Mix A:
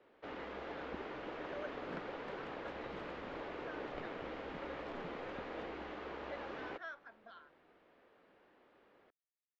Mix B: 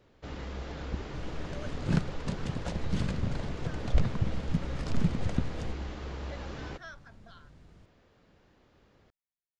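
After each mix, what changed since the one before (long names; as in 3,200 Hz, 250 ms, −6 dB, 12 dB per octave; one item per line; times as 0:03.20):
second sound +11.5 dB
master: remove three-way crossover with the lows and the highs turned down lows −23 dB, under 270 Hz, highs −21 dB, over 3,200 Hz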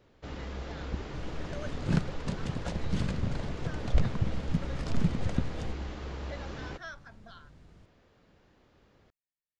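speech +3.0 dB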